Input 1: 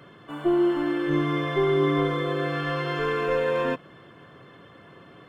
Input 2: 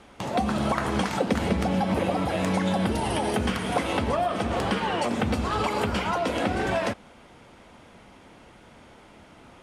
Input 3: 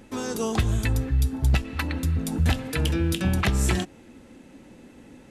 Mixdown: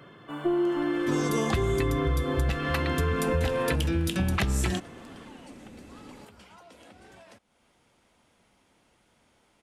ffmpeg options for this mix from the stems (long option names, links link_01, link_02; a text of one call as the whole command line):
ffmpeg -i stem1.wav -i stem2.wav -i stem3.wav -filter_complex "[0:a]volume=-1dB[link_01];[1:a]highshelf=frequency=4100:gain=11.5,acompressor=threshold=-38dB:ratio=2.5,adelay=450,volume=-16.5dB[link_02];[2:a]adelay=950,volume=0dB[link_03];[link_01][link_02][link_03]amix=inputs=3:normalize=0,acompressor=threshold=-22dB:ratio=6" out.wav